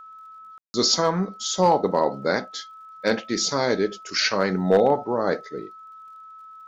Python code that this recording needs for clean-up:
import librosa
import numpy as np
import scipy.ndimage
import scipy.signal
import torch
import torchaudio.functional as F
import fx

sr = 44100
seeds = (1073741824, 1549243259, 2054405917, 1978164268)

y = fx.fix_declip(x, sr, threshold_db=-9.0)
y = fx.fix_declick_ar(y, sr, threshold=6.5)
y = fx.notch(y, sr, hz=1300.0, q=30.0)
y = fx.fix_ambience(y, sr, seeds[0], print_start_s=5.77, print_end_s=6.27, start_s=0.58, end_s=0.74)